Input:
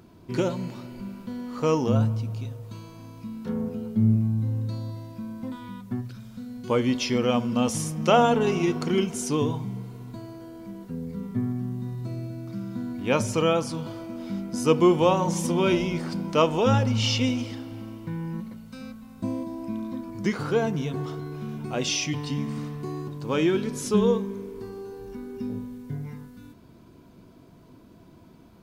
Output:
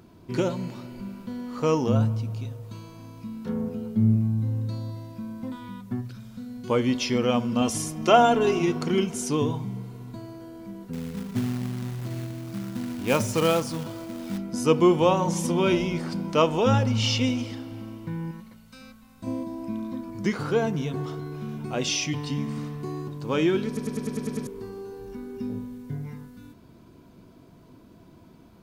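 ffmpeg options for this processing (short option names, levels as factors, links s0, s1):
-filter_complex "[0:a]asettb=1/sr,asplit=3[s0][s1][s2];[s0]atrim=end=7.614[s3];[s1]atrim=start=7.61:end=8.59,asetpts=PTS-STARTPTS,afade=t=in:d=0.004:c=qsin,afade=t=out:st=0.976:d=0.004:c=qsin,aecho=1:1:2.9:0.56,atrim=end_sample=43218[s4];[s2]atrim=start=8.586[s5];[s3][s4]acrossfade=d=0.004:c1=hsin:c2=qsin[s6];[s6][s5]acrossfade=d=0.004:c1=qsin:c2=hsin,asettb=1/sr,asplit=3[s7][s8][s9];[s7]atrim=end=10.934[s10];[s8]atrim=start=10.93:end=14.38,asetpts=PTS-STARTPTS,afade=t=in:d=0.004:c=qsin,afade=t=out:st=3.446:d=0.004:c=qsin,acrusher=bits=3:mode=log:mix=0:aa=0.000001[s11];[s9]atrim=start=14.376[s12];[s10][s11]acrossfade=d=0.004:c1=hsin:c2=qsin[s13];[s13][s12]acrossfade=d=0.004:c1=qsin:c2=hsin,asettb=1/sr,asplit=3[s14][s15][s16];[s14]atrim=end=18.314[s17];[s15]atrim=start=18.31:end=19.27,asetpts=PTS-STARTPTS,afade=t=in:d=0.004:c=qsin,afade=t=out:st=0.956:d=0.004:c=qsin,equalizer=f=240:w=0.35:g=-9.5[s18];[s16]atrim=start=19.266[s19];[s17][s18]acrossfade=d=0.004:c1=hsin:c2=qsin[s20];[s20][s19]acrossfade=d=0.004:c1=qsin:c2=hsin,asplit=9[s21][s22][s23][s24][s25][s26][s27][s28][s29];[s21]atrim=end=23.772[s30];[s22]atrim=start=23.668:end=23.772[s31];[s23]atrim=start=23.668:end=23.772[s32];[s24]atrim=start=23.668:end=23.772[s33];[s25]atrim=start=23.668:end=23.772[s34];[s26]atrim=start=23.668:end=23.772[s35];[s27]atrim=start=23.668:end=23.772[s36];[s28]atrim=start=23.668:end=23.772[s37];[s29]atrim=start=24.468[s38];[s30][s31]acrossfade=d=0.004:c1=hsin:c2=hsin[s39];[s39][s32]acrossfade=d=0.004:c1=hsin:c2=hsin[s40];[s40][s33]acrossfade=d=0.004:c1=hsin:c2=hsin[s41];[s41][s34]acrossfade=d=0.004:c1=hsin:c2=hsin[s42];[s42][s35]acrossfade=d=0.004:c1=hsin:c2=hsin[s43];[s43][s36]acrossfade=d=0.004:c1=hsin:c2=hsin[s44];[s44][s37]acrossfade=d=0.004:c1=hsin:c2=hsin[s45];[s45][s38]acrossfade=d=0.004:c1=hsin:c2=hsin"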